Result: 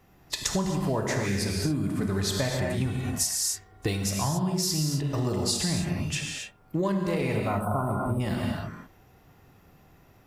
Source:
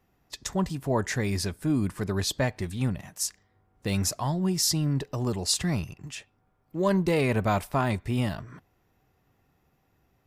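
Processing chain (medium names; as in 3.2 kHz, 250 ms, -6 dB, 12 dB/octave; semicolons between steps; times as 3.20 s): 7.37–8.20 s: time-frequency box 1.5–7.9 kHz -26 dB; gated-style reverb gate 300 ms flat, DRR 0.5 dB; compression 10:1, threshold -33 dBFS, peak gain reduction 17 dB; 2.86–4.04 s: comb 2.7 ms, depth 59%; trim +9 dB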